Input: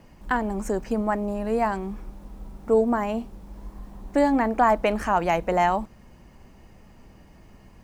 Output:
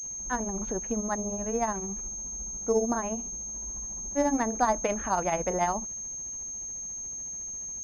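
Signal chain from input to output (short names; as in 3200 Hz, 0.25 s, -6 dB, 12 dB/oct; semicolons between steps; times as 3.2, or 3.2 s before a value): grains 0.117 s, grains 14/s, spray 22 ms, pitch spread up and down by 0 st; pulse-width modulation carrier 6400 Hz; gain -4 dB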